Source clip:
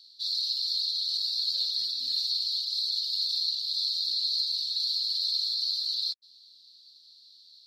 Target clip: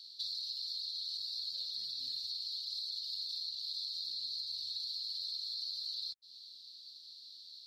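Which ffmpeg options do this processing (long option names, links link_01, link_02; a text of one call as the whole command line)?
ffmpeg -i in.wav -filter_complex "[0:a]acrossover=split=140[link_01][link_02];[link_02]acompressor=threshold=-40dB:ratio=8[link_03];[link_01][link_03]amix=inputs=2:normalize=0,volume=2dB" out.wav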